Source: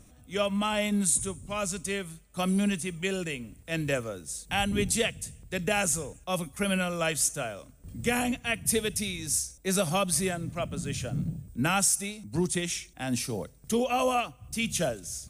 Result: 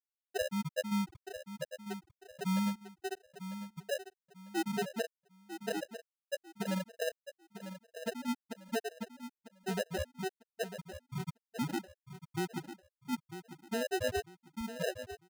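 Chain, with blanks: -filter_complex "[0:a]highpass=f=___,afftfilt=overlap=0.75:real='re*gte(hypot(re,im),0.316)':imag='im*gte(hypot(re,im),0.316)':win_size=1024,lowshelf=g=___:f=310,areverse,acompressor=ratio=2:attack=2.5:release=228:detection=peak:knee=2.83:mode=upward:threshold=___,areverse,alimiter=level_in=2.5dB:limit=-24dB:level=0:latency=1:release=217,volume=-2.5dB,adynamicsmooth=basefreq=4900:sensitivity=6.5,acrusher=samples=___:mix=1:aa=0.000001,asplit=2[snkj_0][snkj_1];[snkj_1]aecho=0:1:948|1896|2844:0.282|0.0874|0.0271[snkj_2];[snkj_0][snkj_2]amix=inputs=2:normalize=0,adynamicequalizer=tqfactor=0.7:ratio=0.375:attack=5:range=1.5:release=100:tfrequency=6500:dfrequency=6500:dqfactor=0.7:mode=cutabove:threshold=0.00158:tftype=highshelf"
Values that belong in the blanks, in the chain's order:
100, -5.5, -48dB, 39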